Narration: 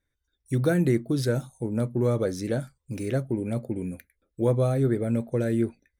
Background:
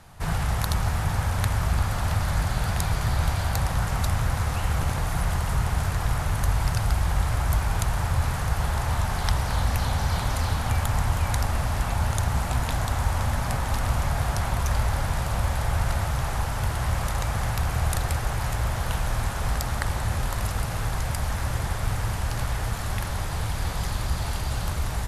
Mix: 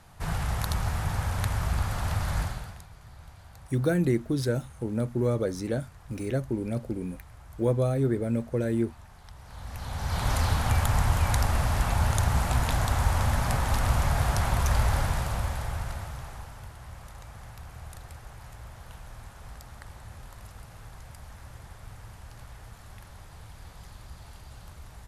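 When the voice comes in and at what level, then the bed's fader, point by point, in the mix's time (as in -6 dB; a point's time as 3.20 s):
3.20 s, -2.0 dB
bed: 2.42 s -4 dB
2.88 s -24.5 dB
9.33 s -24.5 dB
10.30 s 0 dB
14.98 s 0 dB
16.76 s -18.5 dB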